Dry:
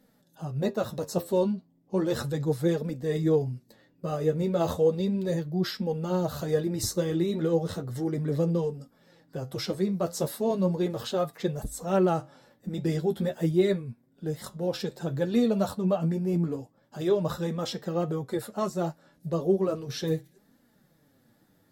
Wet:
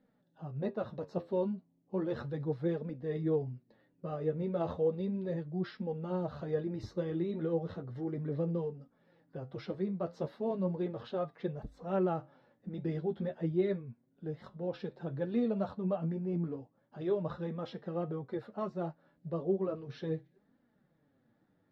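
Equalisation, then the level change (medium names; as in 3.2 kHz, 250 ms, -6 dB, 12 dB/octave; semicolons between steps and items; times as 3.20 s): distance through air 290 m; bass shelf 82 Hz -5.5 dB; treble shelf 7.7 kHz -10.5 dB; -6.5 dB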